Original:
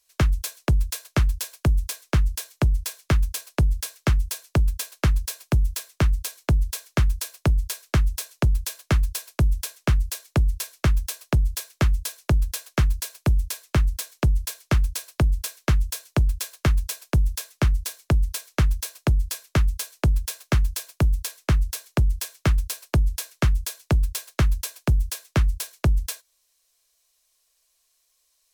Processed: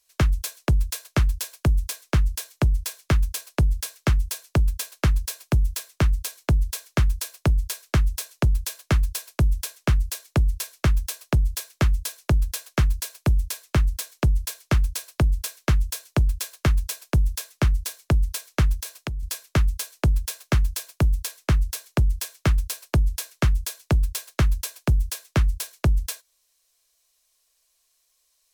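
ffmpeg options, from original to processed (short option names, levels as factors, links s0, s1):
-filter_complex "[0:a]asettb=1/sr,asplit=3[s0][s1][s2];[s0]atrim=end=18.744[s3];[s1]atrim=start=18.74:end=19.23,asetpts=PTS-STARTPTS,afade=t=in:d=0.004:c=qsin,afade=t=out:st=0.486:d=0.004:c=qsin,acompressor=threshold=0.0501:ratio=12:attack=3.2:release=140:knee=1:detection=peak[s4];[s2]atrim=start=19.226[s5];[s3][s4]acrossfade=d=0.004:c1=hsin:c2=qsin[s6];[s6][s5]acrossfade=d=0.004:c1=qsin:c2=hsin"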